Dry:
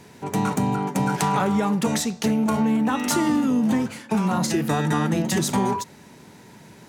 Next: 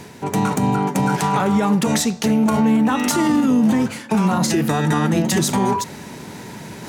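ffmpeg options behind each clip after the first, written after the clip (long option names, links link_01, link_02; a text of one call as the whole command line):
ffmpeg -i in.wav -af "alimiter=limit=-15dB:level=0:latency=1:release=55,areverse,acompressor=mode=upward:threshold=-32dB:ratio=2.5,areverse,volume=6dB" out.wav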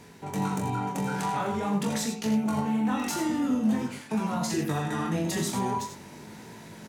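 ffmpeg -i in.wav -filter_complex "[0:a]flanger=delay=18:depth=7:speed=0.46,asplit=2[link_01][link_02];[link_02]aecho=0:1:42|84|99:0.355|0.335|0.251[link_03];[link_01][link_03]amix=inputs=2:normalize=0,volume=-8.5dB" out.wav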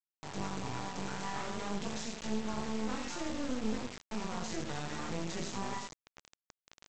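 ffmpeg -i in.wav -af "aeval=exprs='max(val(0),0)':channel_layout=same,aresample=16000,acrusher=bits=5:mix=0:aa=0.000001,aresample=44100,volume=-6dB" out.wav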